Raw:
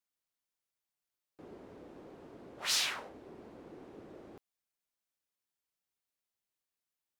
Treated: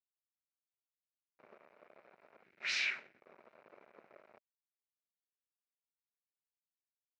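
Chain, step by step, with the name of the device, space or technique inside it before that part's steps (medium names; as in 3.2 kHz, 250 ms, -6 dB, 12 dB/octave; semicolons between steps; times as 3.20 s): blown loudspeaker (crossover distortion -49.5 dBFS; cabinet simulation 250–4700 Hz, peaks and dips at 290 Hz -10 dB, 610 Hz +8 dB, 1.4 kHz +3 dB, 2.3 kHz +9 dB, 3.3 kHz -9 dB, 4.6 kHz -5 dB); 2.43–3.22 s: high-order bell 760 Hz -13.5 dB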